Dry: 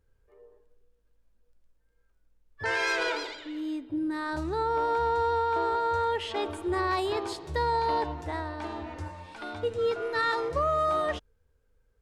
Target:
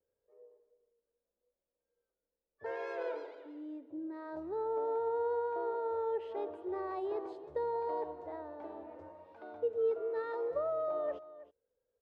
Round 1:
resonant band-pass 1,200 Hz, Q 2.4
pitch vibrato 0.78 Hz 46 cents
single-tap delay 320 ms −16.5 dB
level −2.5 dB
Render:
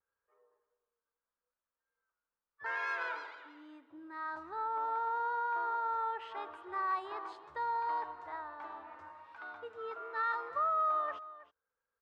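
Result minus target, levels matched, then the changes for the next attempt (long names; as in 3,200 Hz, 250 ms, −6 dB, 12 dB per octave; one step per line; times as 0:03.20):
500 Hz band −13.0 dB
change: resonant band-pass 520 Hz, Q 2.4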